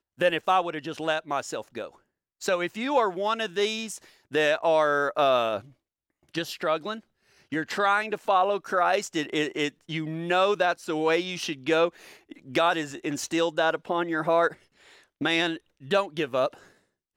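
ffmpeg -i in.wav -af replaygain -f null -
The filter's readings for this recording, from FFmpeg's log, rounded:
track_gain = +5.8 dB
track_peak = 0.184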